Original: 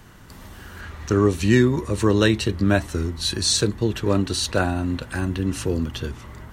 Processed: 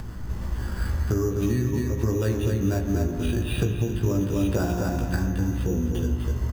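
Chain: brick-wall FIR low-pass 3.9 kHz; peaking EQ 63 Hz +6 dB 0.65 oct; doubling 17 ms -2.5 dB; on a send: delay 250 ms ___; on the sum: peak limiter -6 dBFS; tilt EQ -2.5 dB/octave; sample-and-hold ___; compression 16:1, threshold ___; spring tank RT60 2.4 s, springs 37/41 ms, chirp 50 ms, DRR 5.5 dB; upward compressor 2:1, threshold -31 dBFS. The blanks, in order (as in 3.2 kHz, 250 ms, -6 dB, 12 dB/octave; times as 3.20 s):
-7 dB, 7×, -21 dBFS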